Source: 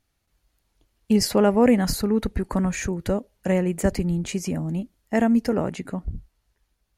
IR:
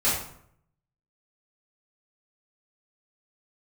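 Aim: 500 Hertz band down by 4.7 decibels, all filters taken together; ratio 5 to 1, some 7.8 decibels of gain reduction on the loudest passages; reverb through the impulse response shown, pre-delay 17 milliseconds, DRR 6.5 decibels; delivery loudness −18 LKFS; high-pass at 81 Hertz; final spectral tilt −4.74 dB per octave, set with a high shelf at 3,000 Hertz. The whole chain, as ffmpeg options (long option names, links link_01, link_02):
-filter_complex "[0:a]highpass=81,equalizer=frequency=500:width_type=o:gain=-6,highshelf=frequency=3000:gain=5.5,acompressor=threshold=-24dB:ratio=5,asplit=2[link_01][link_02];[1:a]atrim=start_sample=2205,adelay=17[link_03];[link_02][link_03]afir=irnorm=-1:irlink=0,volume=-19.5dB[link_04];[link_01][link_04]amix=inputs=2:normalize=0,volume=9.5dB"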